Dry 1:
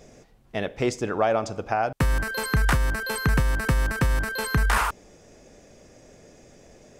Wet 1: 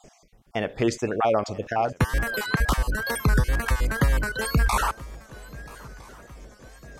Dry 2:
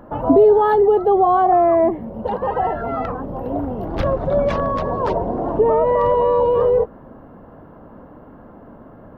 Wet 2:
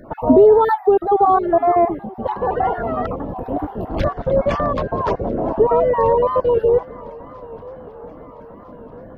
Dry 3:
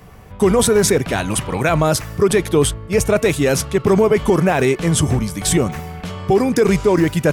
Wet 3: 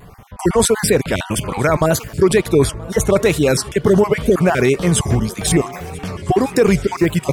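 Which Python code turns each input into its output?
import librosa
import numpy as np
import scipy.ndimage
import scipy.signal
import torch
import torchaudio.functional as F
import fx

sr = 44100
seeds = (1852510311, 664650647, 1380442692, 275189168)

y = fx.spec_dropout(x, sr, seeds[0], share_pct=27)
y = fx.echo_swing(y, sr, ms=1304, ratio=3, feedback_pct=52, wet_db=-22)
y = fx.wow_flutter(y, sr, seeds[1], rate_hz=2.1, depth_cents=97.0)
y = F.gain(torch.from_numpy(y), 1.5).numpy()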